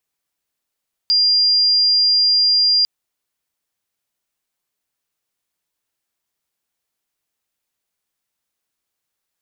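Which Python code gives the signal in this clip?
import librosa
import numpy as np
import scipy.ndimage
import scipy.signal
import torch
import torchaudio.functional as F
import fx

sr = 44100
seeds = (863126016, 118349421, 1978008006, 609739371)

y = 10.0 ** (-11.5 / 20.0) * np.sin(2.0 * np.pi * (4800.0 * (np.arange(round(1.75 * sr)) / sr)))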